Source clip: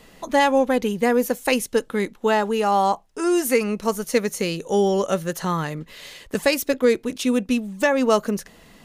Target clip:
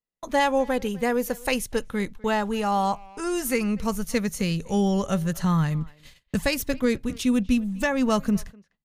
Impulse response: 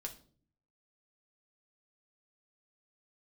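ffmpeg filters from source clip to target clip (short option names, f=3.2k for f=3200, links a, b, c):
-filter_complex "[0:a]agate=range=-44dB:threshold=-38dB:ratio=16:detection=peak,asplit=2[a][b];[b]adelay=250,highpass=300,lowpass=3.4k,asoftclip=type=hard:threshold=-15.5dB,volume=-21dB[c];[a][c]amix=inputs=2:normalize=0,asubboost=boost=11:cutoff=120,volume=-3.5dB"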